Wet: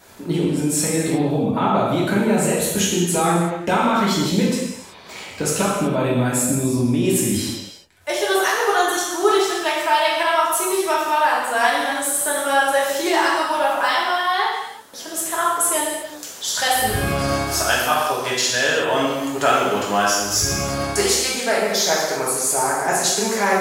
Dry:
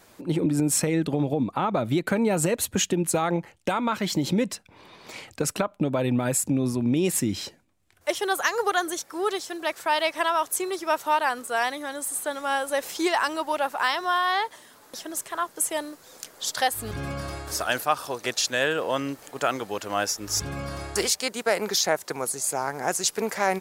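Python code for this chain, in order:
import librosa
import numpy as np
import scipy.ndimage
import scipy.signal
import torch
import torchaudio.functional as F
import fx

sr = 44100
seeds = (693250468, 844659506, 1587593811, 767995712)

y = fx.rider(x, sr, range_db=10, speed_s=0.5)
y = fx.rev_gated(y, sr, seeds[0], gate_ms=400, shape='falling', drr_db=-6.5)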